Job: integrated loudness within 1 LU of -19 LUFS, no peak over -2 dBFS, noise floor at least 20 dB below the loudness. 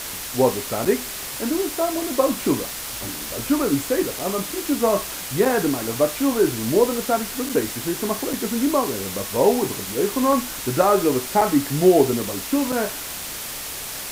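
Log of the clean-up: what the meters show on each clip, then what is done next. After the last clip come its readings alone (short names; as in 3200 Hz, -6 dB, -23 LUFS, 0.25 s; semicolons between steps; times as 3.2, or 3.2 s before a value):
dropouts 7; longest dropout 4.7 ms; noise floor -32 dBFS; noise floor target -42 dBFS; loudness -22.0 LUFS; peak -4.5 dBFS; loudness target -19.0 LUFS
-> interpolate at 0.85/4.19/5.45/7.49/8.33/11.41/12.72, 4.7 ms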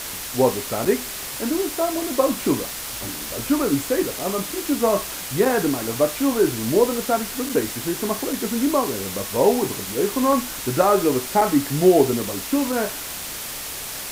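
dropouts 0; noise floor -32 dBFS; noise floor target -42 dBFS
-> denoiser 10 dB, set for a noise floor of -32 dBFS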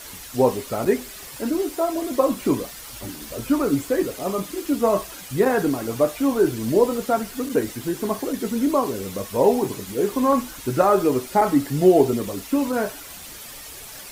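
noise floor -39 dBFS; noise floor target -42 dBFS
-> denoiser 6 dB, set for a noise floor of -39 dBFS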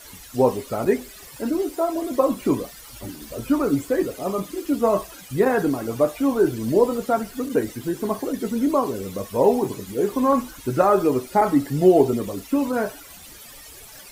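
noise floor -43 dBFS; loudness -22.5 LUFS; peak -4.5 dBFS; loudness target -19.0 LUFS
-> gain +3.5 dB; limiter -2 dBFS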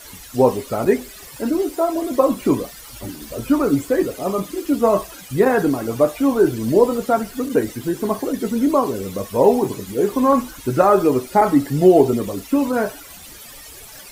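loudness -19.0 LUFS; peak -2.0 dBFS; noise floor -40 dBFS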